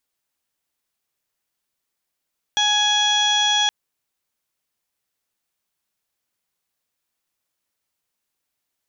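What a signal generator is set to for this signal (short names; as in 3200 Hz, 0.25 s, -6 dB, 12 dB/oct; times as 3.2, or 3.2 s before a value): steady additive tone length 1.12 s, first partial 835 Hz, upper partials -2.5/-8.5/5.5/-14.5/-17/-4.5/-12 dB, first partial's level -23 dB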